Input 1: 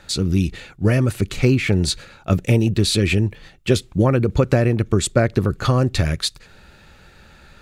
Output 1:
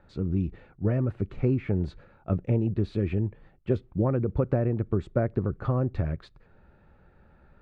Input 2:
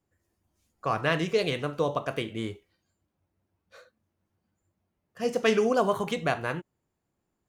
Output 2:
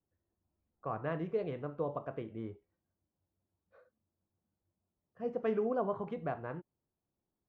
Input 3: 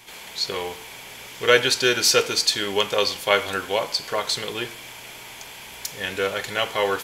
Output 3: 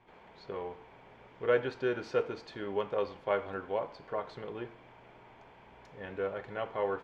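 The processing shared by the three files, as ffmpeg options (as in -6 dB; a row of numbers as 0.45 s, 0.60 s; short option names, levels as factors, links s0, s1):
-af "lowpass=1100,volume=0.376"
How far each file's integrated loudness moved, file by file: -9.0 LU, -9.5 LU, -13.5 LU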